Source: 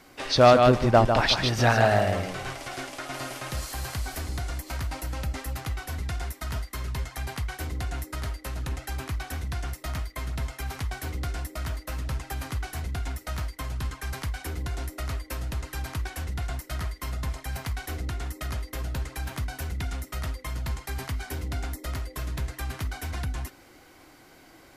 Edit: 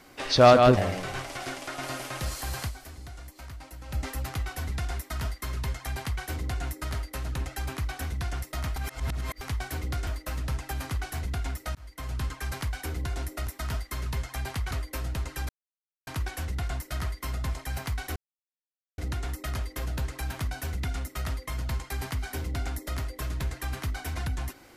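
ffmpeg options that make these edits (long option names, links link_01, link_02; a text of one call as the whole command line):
ffmpeg -i in.wav -filter_complex "[0:a]asplit=12[link_01][link_02][link_03][link_04][link_05][link_06][link_07][link_08][link_09][link_10][link_11][link_12];[link_01]atrim=end=0.772[link_13];[link_02]atrim=start=2.078:end=4.32,asetpts=PTS-STARTPTS,afade=type=out:start_time=1.902:duration=0.34:curve=exp:silence=0.281838[link_14];[link_03]atrim=start=4.32:end=4.92,asetpts=PTS-STARTPTS,volume=-11dB[link_15];[link_04]atrim=start=4.92:end=10.072,asetpts=PTS-STARTPTS,afade=type=in:duration=0.34:curve=exp:silence=0.281838[link_16];[link_05]atrim=start=10.068:end=10.722,asetpts=PTS-STARTPTS,areverse[link_17];[link_06]atrim=start=10.718:end=11.382[link_18];[link_07]atrim=start=11.678:end=13.36,asetpts=PTS-STARTPTS,afade=type=out:start_time=1.678:duration=0.004:curve=hsin[link_19];[link_08]atrim=start=13.36:end=15.082,asetpts=PTS-STARTPTS,afade=type=in:duration=0.4[link_20];[link_09]atrim=start=6.288:end=7.532[link_21];[link_10]atrim=start=15.078:end=15.86,asetpts=PTS-STARTPTS,afade=type=out:start_time=0.778:duration=0.004:curve=hsin,apad=pad_dur=0.58[link_22];[link_11]atrim=start=15.86:end=17.95,asetpts=PTS-STARTPTS,afade=type=in:duration=0.004:curve=hsin,afade=type=out:start_time=2.086:duration=0.004:curve=hsin,apad=pad_dur=0.82[link_23];[link_12]atrim=start=17.95,asetpts=PTS-STARTPTS,afade=type=in:duration=0.004:curve=hsin[link_24];[link_14][link_15][link_16]concat=n=3:v=0:a=1[link_25];[link_13][link_25]acrossfade=duration=0.004:curve1=hsin:curve2=hsin[link_26];[link_26][link_17]acrossfade=duration=0.004:curve1=hsin:curve2=hsin[link_27];[link_27][link_18]acrossfade=duration=0.004:curve1=hsin:curve2=hsin[link_28];[link_19][link_20]concat=n=2:v=0:a=1[link_29];[link_28][link_29]acrossfade=duration=0.004:curve1=hsin:curve2=hsin[link_30];[link_30][link_21]acrossfade=duration=0.004:curve1=hsin:curve2=hsin[link_31];[link_22][link_23][link_24]concat=n=3:v=0:a=1[link_32];[link_31][link_32]acrossfade=duration=0.004:curve1=hsin:curve2=hsin" out.wav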